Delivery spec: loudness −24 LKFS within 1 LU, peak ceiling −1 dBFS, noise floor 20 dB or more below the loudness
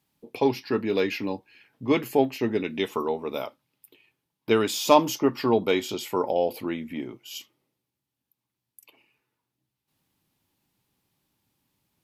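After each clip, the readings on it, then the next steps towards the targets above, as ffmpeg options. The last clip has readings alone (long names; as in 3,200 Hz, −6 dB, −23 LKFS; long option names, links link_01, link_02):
integrated loudness −25.5 LKFS; sample peak −4.0 dBFS; target loudness −24.0 LKFS
→ -af "volume=1.5dB"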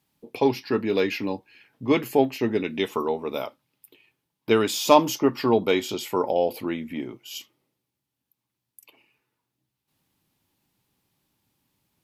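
integrated loudness −24.0 LKFS; sample peak −2.5 dBFS; background noise floor −84 dBFS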